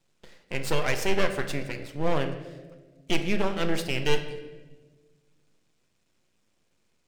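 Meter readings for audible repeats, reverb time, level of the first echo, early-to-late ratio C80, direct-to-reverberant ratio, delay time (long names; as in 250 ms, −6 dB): no echo audible, 1.4 s, no echo audible, 11.5 dB, 6.5 dB, no echo audible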